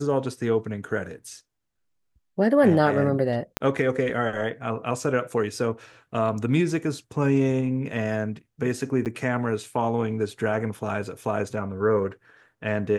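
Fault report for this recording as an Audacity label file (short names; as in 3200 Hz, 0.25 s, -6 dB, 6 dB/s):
3.570000	3.570000	pop -9 dBFS
9.050000	9.060000	gap 8.4 ms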